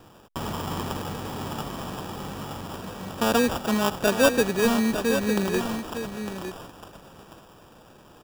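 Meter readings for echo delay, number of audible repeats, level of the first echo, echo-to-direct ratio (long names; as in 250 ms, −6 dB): 905 ms, 1, −8.5 dB, −8.5 dB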